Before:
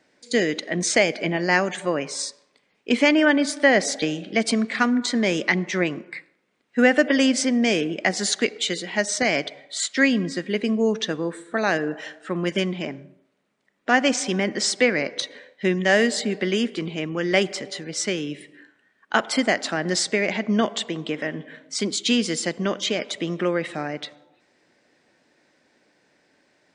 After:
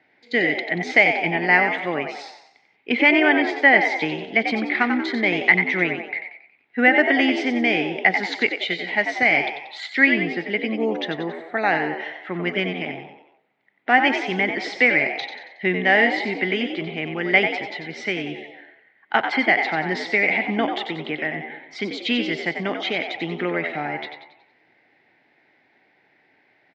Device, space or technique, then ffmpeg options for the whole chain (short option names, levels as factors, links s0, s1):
frequency-shifting delay pedal into a guitar cabinet: -filter_complex "[0:a]asplit=6[s0][s1][s2][s3][s4][s5];[s1]adelay=92,afreqshift=74,volume=0.422[s6];[s2]adelay=184,afreqshift=148,volume=0.191[s7];[s3]adelay=276,afreqshift=222,volume=0.0851[s8];[s4]adelay=368,afreqshift=296,volume=0.0385[s9];[s5]adelay=460,afreqshift=370,volume=0.0174[s10];[s0][s6][s7][s8][s9][s10]amix=inputs=6:normalize=0,highpass=81,equalizer=f=110:t=q:w=4:g=5,equalizer=f=210:t=q:w=4:g=-4,equalizer=f=540:t=q:w=4:g=-5,equalizer=f=800:t=q:w=4:g=8,equalizer=f=1100:t=q:w=4:g=-4,equalizer=f=2100:t=q:w=4:g=10,lowpass=f=3700:w=0.5412,lowpass=f=3700:w=1.3066,volume=0.891"